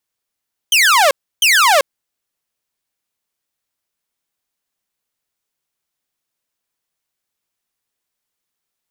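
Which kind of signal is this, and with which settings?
burst of laser zaps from 3200 Hz, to 520 Hz, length 0.39 s saw, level -6 dB, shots 2, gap 0.31 s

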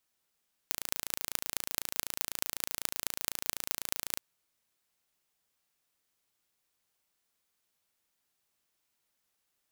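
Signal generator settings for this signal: pulse train 28/s, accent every 6, -1.5 dBFS 3.48 s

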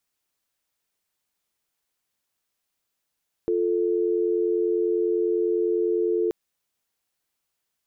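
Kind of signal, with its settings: call progress tone dial tone, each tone -23 dBFS 2.83 s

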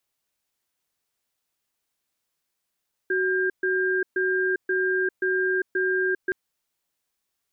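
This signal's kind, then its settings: cadence 373 Hz, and 1600 Hz, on 0.40 s, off 0.13 s, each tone -23.5 dBFS 3.22 s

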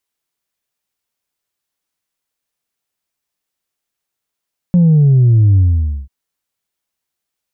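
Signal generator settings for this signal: sub drop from 180 Hz, over 1.34 s, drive 1 dB, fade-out 0.51 s, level -6.5 dB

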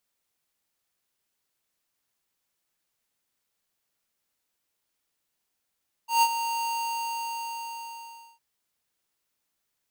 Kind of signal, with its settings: ADSR square 925 Hz, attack 0.141 s, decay 56 ms, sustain -10.5 dB, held 0.57 s, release 1.74 s -18.5 dBFS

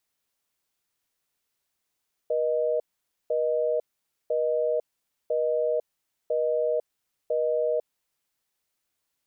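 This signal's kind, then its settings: call progress tone busy tone, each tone -25 dBFS 5.84 s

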